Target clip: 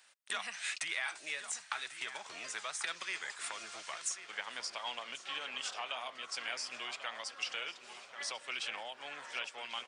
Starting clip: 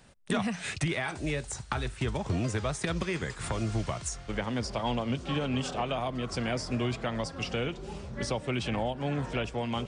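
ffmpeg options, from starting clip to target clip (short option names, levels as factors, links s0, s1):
-filter_complex "[0:a]highpass=1400,asplit=2[s0][s1];[s1]adelay=1091,lowpass=f=2600:p=1,volume=0.316,asplit=2[s2][s3];[s3]adelay=1091,lowpass=f=2600:p=1,volume=0.48,asplit=2[s4][s5];[s5]adelay=1091,lowpass=f=2600:p=1,volume=0.48,asplit=2[s6][s7];[s7]adelay=1091,lowpass=f=2600:p=1,volume=0.48,asplit=2[s8][s9];[s9]adelay=1091,lowpass=f=2600:p=1,volume=0.48[s10];[s2][s4][s6][s8][s10]amix=inputs=5:normalize=0[s11];[s0][s11]amix=inputs=2:normalize=0,volume=0.891"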